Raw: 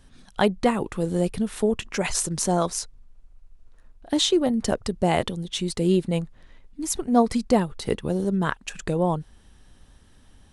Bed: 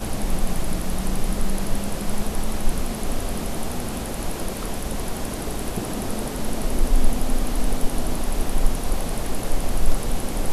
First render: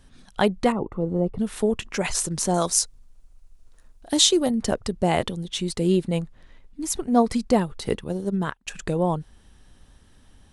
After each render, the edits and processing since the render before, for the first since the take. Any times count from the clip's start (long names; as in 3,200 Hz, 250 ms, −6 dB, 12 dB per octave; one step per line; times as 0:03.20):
0:00.72–0:01.39: Savitzky-Golay smoothing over 65 samples
0:02.54–0:04.51: bass and treble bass −1 dB, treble +10 dB
0:08.04–0:08.67: expander for the loud parts 2.5 to 1, over −32 dBFS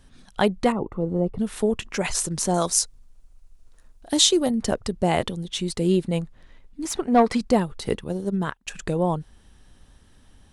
0:06.85–0:07.41: mid-hump overdrive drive 15 dB, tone 1,900 Hz, clips at −6 dBFS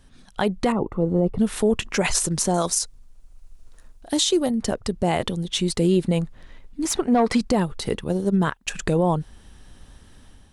automatic gain control gain up to 6 dB
brickwall limiter −10.5 dBFS, peak gain reduction 8.5 dB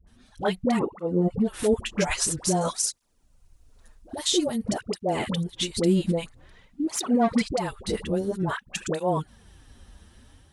all-pass dispersion highs, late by 72 ms, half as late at 730 Hz
through-zero flanger with one copy inverted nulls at 0.5 Hz, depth 8 ms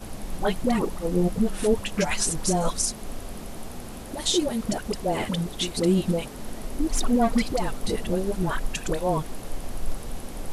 mix in bed −10 dB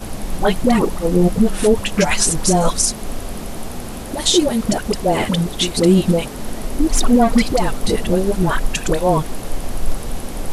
level +9 dB
brickwall limiter −3 dBFS, peak gain reduction 3 dB